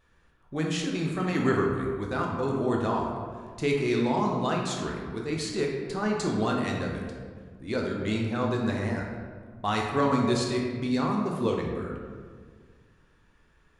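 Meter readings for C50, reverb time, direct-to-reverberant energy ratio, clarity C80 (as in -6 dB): 2.0 dB, 1.8 s, -1.0 dB, 4.0 dB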